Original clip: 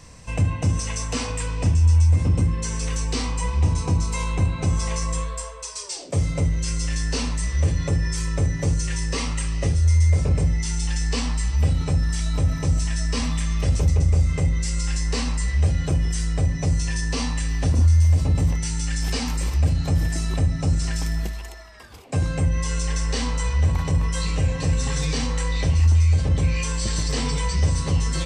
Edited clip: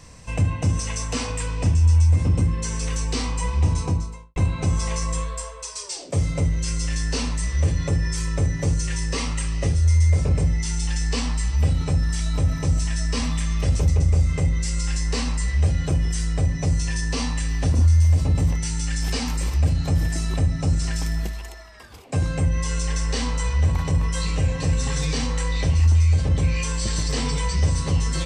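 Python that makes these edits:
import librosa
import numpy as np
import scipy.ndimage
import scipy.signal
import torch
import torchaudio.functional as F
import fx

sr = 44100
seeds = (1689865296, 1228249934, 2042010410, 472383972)

y = fx.studio_fade_out(x, sr, start_s=3.77, length_s=0.59)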